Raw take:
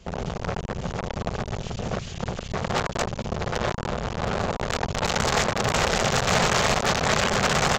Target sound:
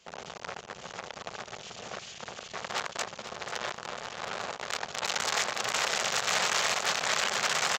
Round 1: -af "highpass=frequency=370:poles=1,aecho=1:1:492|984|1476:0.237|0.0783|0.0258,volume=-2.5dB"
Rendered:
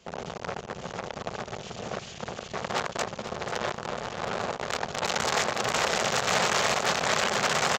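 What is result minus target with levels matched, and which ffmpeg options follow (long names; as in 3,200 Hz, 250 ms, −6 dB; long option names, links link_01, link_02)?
500 Hz band +5.5 dB
-af "highpass=frequency=1500:poles=1,aecho=1:1:492|984|1476:0.237|0.0783|0.0258,volume=-2.5dB"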